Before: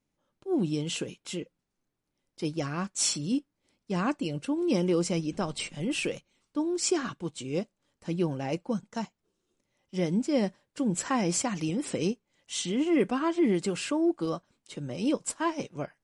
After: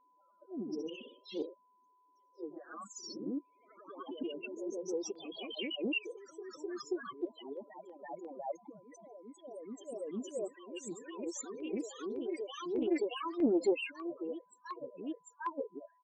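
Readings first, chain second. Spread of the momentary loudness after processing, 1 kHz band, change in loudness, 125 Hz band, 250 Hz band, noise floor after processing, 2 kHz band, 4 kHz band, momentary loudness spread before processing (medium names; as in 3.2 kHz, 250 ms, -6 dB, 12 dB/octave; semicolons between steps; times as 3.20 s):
15 LU, -9.5 dB, -9.5 dB, -24.5 dB, -10.5 dB, -70 dBFS, -7.5 dB, -9.0 dB, 12 LU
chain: high-pass 370 Hz 12 dB/octave; treble shelf 5.3 kHz -5 dB; harmonic-percussive split harmonic -12 dB; slow attack 601 ms; in parallel at +1.5 dB: compression 6:1, threshold -53 dBFS, peak gain reduction 18.5 dB; on the sum: resampled via 16 kHz; loudest bins only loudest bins 4; LFO notch saw down 0.97 Hz 590–2700 Hz; ever faster or slower copies 111 ms, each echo +1 st, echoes 3, each echo -6 dB; whistle 1 kHz -76 dBFS; loudspeaker Doppler distortion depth 0.24 ms; trim +8.5 dB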